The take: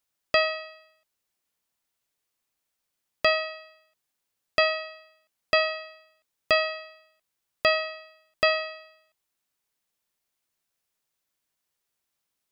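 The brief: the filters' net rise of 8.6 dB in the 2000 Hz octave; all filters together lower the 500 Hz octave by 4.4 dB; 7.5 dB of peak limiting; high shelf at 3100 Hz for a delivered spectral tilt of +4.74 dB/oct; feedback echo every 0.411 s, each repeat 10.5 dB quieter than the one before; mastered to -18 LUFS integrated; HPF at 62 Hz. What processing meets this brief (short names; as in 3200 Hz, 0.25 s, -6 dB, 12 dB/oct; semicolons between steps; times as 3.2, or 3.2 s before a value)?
HPF 62 Hz; bell 500 Hz -7.5 dB; bell 2000 Hz +8 dB; high shelf 3100 Hz +6.5 dB; limiter -11 dBFS; feedback echo 0.411 s, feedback 30%, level -10.5 dB; gain +6.5 dB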